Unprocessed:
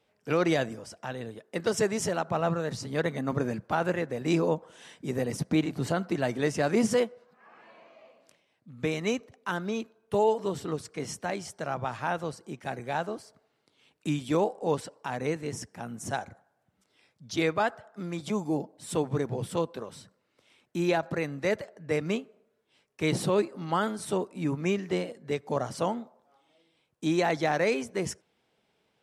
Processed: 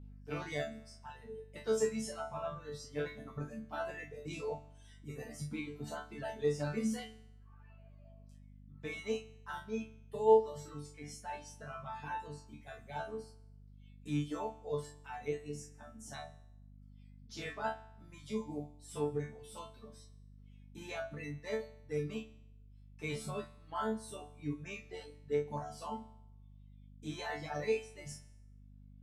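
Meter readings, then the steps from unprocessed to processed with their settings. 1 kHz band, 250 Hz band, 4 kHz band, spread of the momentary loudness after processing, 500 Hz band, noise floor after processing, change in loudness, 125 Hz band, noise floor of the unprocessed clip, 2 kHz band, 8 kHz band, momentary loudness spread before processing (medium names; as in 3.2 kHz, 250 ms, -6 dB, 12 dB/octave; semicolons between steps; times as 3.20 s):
-9.5 dB, -12.0 dB, -11.0 dB, 23 LU, -8.0 dB, -57 dBFS, -9.5 dB, -10.0 dB, -74 dBFS, -11.0 dB, -10.5 dB, 11 LU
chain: chord resonator D3 fifth, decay 0.78 s; hum 50 Hz, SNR 12 dB; reverb removal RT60 1.9 s; trim +8.5 dB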